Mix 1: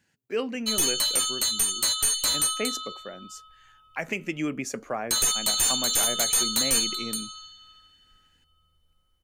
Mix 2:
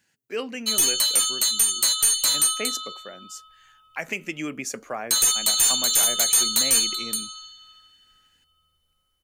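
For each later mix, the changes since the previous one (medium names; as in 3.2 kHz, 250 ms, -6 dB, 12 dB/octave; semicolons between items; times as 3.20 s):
master: add tilt EQ +1.5 dB/octave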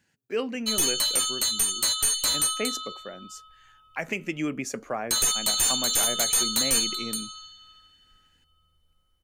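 master: add tilt EQ -1.5 dB/octave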